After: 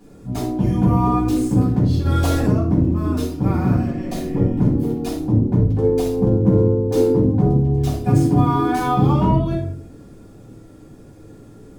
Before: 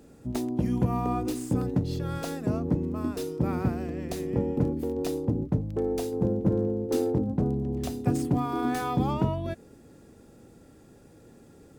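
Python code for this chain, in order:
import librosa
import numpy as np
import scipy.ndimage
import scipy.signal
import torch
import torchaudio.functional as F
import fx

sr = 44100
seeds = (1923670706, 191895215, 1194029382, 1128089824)

y = fx.room_shoebox(x, sr, seeds[0], volume_m3=550.0, walls='furnished', distance_m=8.0)
y = fx.env_flatten(y, sr, amount_pct=50, at=(2.05, 2.52), fade=0.02)
y = F.gain(torch.from_numpy(y), -3.5).numpy()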